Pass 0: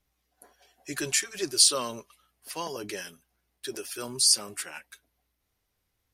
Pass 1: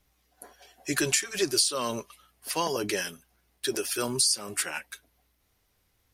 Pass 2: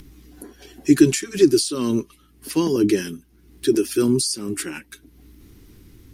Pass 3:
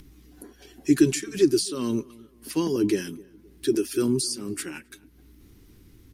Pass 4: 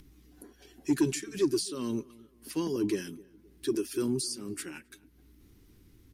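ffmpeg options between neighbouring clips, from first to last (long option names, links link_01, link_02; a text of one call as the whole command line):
ffmpeg -i in.wav -af "acompressor=threshold=-28dB:ratio=16,volume=7dB" out.wav
ffmpeg -i in.wav -af "lowshelf=frequency=450:width_type=q:width=3:gain=11.5,acompressor=mode=upward:threshold=-33dB:ratio=2.5" out.wav
ffmpeg -i in.wav -filter_complex "[0:a]asplit=2[link_01][link_02];[link_02]adelay=262,lowpass=frequency=1200:poles=1,volume=-22dB,asplit=2[link_03][link_04];[link_04]adelay=262,lowpass=frequency=1200:poles=1,volume=0.38,asplit=2[link_05][link_06];[link_06]adelay=262,lowpass=frequency=1200:poles=1,volume=0.38[link_07];[link_01][link_03][link_05][link_07]amix=inputs=4:normalize=0,volume=-5dB" out.wav
ffmpeg -i in.wav -af "asoftclip=type=tanh:threshold=-10.5dB,volume=-6dB" out.wav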